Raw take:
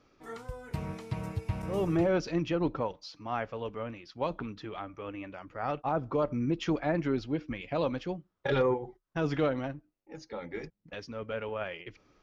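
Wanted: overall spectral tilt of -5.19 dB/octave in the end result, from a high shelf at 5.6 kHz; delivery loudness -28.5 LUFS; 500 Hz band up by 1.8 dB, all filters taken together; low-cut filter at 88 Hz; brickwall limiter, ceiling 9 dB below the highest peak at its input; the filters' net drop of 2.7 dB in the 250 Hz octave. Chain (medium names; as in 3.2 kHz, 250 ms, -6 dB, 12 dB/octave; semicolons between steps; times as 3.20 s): high-pass 88 Hz; peaking EQ 250 Hz -5.5 dB; peaking EQ 500 Hz +3.5 dB; treble shelf 5.6 kHz +3.5 dB; trim +7.5 dB; peak limiter -16 dBFS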